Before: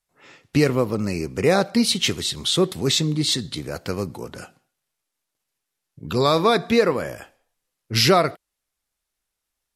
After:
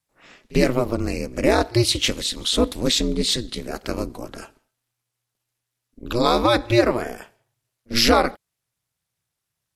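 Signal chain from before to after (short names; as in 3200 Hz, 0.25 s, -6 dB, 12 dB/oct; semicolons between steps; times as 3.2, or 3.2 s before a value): ring modulator 120 Hz; pre-echo 47 ms -24 dB; gain +3 dB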